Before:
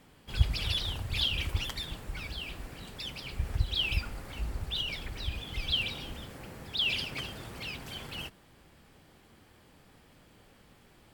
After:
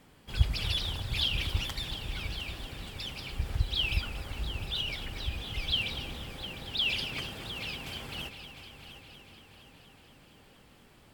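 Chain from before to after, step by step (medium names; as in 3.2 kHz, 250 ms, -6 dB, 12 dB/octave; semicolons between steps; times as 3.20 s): multi-head delay 235 ms, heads first and third, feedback 59%, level -13 dB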